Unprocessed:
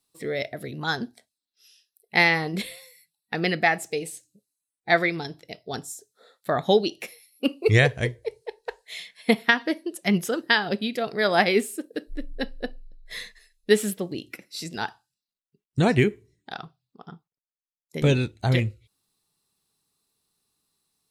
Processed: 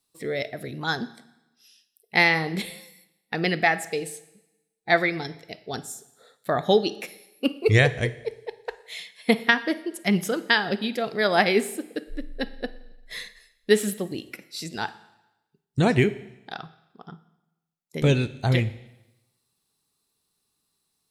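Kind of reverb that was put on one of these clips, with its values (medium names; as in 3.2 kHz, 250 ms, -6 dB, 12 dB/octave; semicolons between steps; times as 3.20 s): Schroeder reverb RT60 0.96 s, DRR 16 dB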